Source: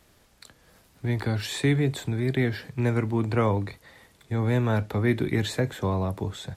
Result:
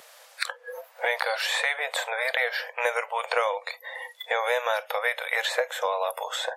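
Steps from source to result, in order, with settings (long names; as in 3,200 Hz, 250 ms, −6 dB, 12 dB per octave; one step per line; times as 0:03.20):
linear-phase brick-wall high-pass 470 Hz
noise reduction from a noise print of the clip's start 25 dB
multiband upward and downward compressor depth 100%
level +6.5 dB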